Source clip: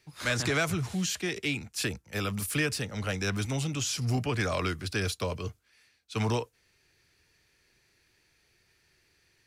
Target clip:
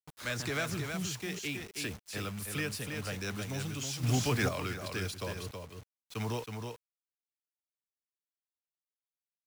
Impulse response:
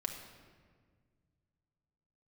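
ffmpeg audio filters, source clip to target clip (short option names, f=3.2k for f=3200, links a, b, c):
-filter_complex "[0:a]acrusher=bits=6:mix=0:aa=0.000001,aecho=1:1:321:0.531,asettb=1/sr,asplit=3[a][b][c];[a]atrim=end=4.034[d];[b]atrim=start=4.03:end=4.49,asetpts=PTS-STARTPTS,afade=t=in:d=0.004:c=qsin,afade=t=out:st=0.456:d=0.004:c=qsin,acontrast=56[e];[c]atrim=start=4.486[f];[d][e]acrossfade=d=0.004:c1=hsin:c2=qsin[g];[g][f]acrossfade=d=0.004:c1=qsin:c2=hsin,volume=-7dB"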